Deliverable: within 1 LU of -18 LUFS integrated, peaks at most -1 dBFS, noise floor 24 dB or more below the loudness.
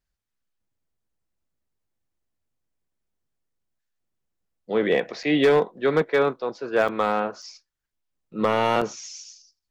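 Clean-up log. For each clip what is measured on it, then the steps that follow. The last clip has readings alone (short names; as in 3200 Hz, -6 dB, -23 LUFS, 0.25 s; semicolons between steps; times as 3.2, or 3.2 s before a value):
clipped 0.4%; flat tops at -12.0 dBFS; dropouts 4; longest dropout 5.3 ms; loudness -23.0 LUFS; peak -12.0 dBFS; loudness target -18.0 LUFS
-> clip repair -12 dBFS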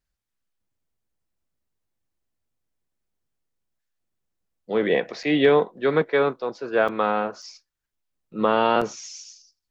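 clipped 0.0%; dropouts 4; longest dropout 5.3 ms
-> interpolate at 5.23/6.88/7.42/8.81, 5.3 ms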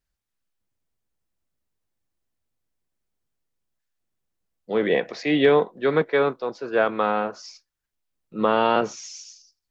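dropouts 0; loudness -22.5 LUFS; peak -6.0 dBFS; loudness target -18.0 LUFS
-> gain +4.5 dB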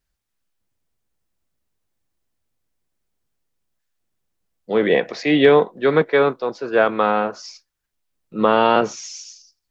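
loudness -18.0 LUFS; peak -1.5 dBFS; noise floor -77 dBFS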